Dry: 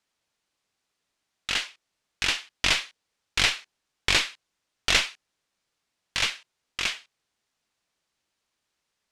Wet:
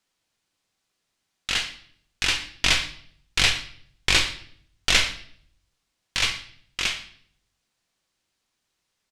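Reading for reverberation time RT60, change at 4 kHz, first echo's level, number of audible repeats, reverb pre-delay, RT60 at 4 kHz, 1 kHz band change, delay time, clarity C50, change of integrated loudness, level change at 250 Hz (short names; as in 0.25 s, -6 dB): 0.60 s, +3.0 dB, -20.5 dB, 1, 3 ms, 0.55 s, +1.0 dB, 0.116 s, 11.5 dB, +2.0 dB, +3.0 dB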